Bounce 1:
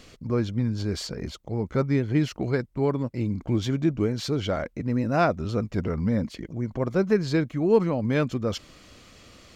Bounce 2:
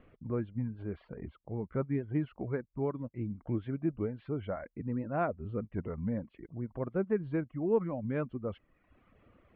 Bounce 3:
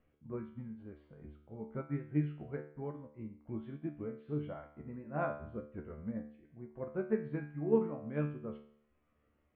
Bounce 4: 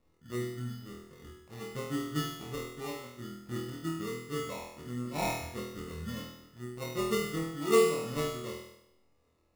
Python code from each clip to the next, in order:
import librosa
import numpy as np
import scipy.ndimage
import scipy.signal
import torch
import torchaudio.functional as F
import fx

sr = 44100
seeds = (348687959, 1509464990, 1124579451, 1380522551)

y1 = scipy.signal.sosfilt(scipy.signal.bessel(8, 1500.0, 'lowpass', norm='mag', fs=sr, output='sos'), x)
y1 = fx.dereverb_blind(y1, sr, rt60_s=0.93)
y1 = y1 * librosa.db_to_amplitude(-8.0)
y2 = fx.comb_fb(y1, sr, f0_hz=74.0, decay_s=0.75, harmonics='all', damping=0.0, mix_pct=90)
y2 = fx.upward_expand(y2, sr, threshold_db=-59.0, expansion=1.5)
y2 = y2 * librosa.db_to_amplitude(11.0)
y3 = fx.sample_hold(y2, sr, seeds[0], rate_hz=1600.0, jitter_pct=0)
y3 = fx.room_flutter(y3, sr, wall_m=4.2, rt60_s=0.83)